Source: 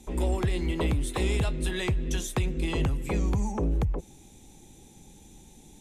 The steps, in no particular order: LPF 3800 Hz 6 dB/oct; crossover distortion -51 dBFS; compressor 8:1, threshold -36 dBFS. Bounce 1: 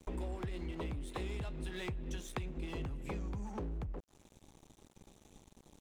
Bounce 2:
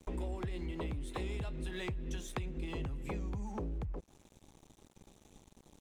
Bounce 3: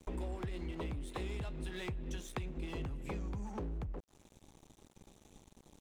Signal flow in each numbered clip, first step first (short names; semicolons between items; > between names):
LPF > compressor > crossover distortion; LPF > crossover distortion > compressor; compressor > LPF > crossover distortion